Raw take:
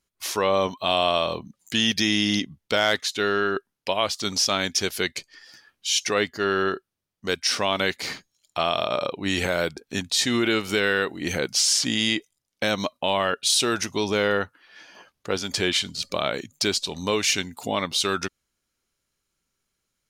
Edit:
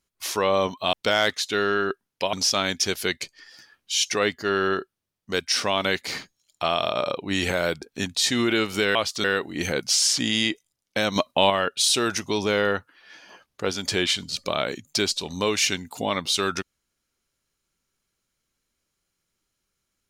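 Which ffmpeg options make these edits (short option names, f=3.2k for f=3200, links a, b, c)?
-filter_complex "[0:a]asplit=7[a][b][c][d][e][f][g];[a]atrim=end=0.932[h];[b]atrim=start=2.588:end=3.992[i];[c]atrim=start=4.278:end=10.902[j];[d]atrim=start=3.988:end=4.282[k];[e]atrim=start=10.898:end=12.822[l];[f]atrim=start=12.818:end=13.162,asetpts=PTS-STARTPTS,volume=5dB[m];[g]atrim=start=13.158[n];[h][i]acrossfade=d=0.004:c1=hsin:c2=hsin[o];[o][j]acrossfade=d=0.004:c1=hsin:c2=hsin[p];[p][k]acrossfade=d=0.004:c1=hsin:c2=hsin[q];[q][l]acrossfade=d=0.004:c1=hsin:c2=hsin[r];[r][m]acrossfade=d=0.004:c1=hsin:c2=hsin[s];[s][n]acrossfade=d=0.004:c1=hsin:c2=hsin"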